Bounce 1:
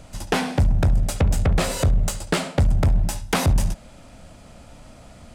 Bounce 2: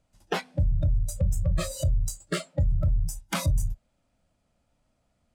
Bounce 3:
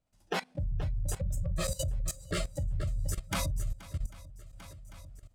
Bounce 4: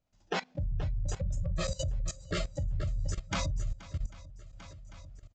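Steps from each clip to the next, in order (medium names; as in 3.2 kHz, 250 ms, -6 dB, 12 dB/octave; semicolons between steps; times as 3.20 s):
spectral noise reduction 22 dB; trim -5.5 dB
shuffle delay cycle 795 ms, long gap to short 1.5:1, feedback 36%, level -12.5 dB; level held to a coarse grid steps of 17 dB; trim +3.5 dB
resampled via 16 kHz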